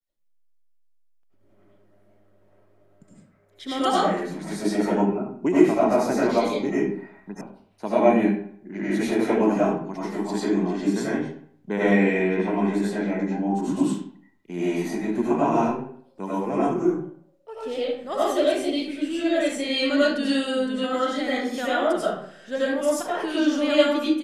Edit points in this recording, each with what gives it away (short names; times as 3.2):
7.41 sound cut off